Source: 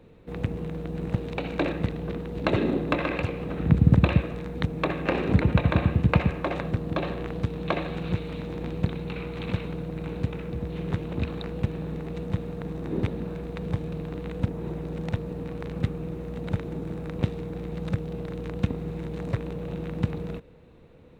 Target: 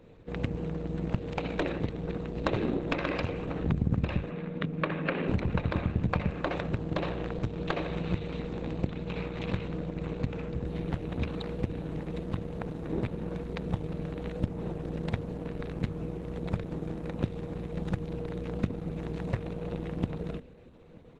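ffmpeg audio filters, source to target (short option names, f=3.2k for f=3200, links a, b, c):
-filter_complex "[0:a]bandreject=f=50:t=h:w=6,bandreject=f=100:t=h:w=6,bandreject=f=150:t=h:w=6,bandreject=f=200:t=h:w=6,bandreject=f=250:t=h:w=6,bandreject=f=300:t=h:w=6,bandreject=f=350:t=h:w=6,bandreject=f=400:t=h:w=6,acompressor=threshold=-25dB:ratio=4,aeval=exprs='0.282*(cos(1*acos(clip(val(0)/0.282,-1,1)))-cos(1*PI/2))+0.0447*(cos(4*acos(clip(val(0)/0.282,-1,1)))-cos(4*PI/2))':c=same,asplit=3[a][b][c];[a]afade=t=out:st=4.29:d=0.02[d];[b]highpass=f=160:w=0.5412,highpass=f=160:w=1.3066,equalizer=f=160:t=q:w=4:g=6,equalizer=f=370:t=q:w=4:g=-4,equalizer=f=770:t=q:w=4:g=-7,lowpass=f=3.4k:w=0.5412,lowpass=f=3.4k:w=1.3066,afade=t=in:st=4.29:d=0.02,afade=t=out:st=5.27:d=0.02[e];[c]afade=t=in:st=5.27:d=0.02[f];[d][e][f]amix=inputs=3:normalize=0,asplit=2[g][h];[h]adelay=932.9,volume=-26dB,highshelf=f=4k:g=-21[i];[g][i]amix=inputs=2:normalize=0" -ar 48000 -c:a libopus -b:a 12k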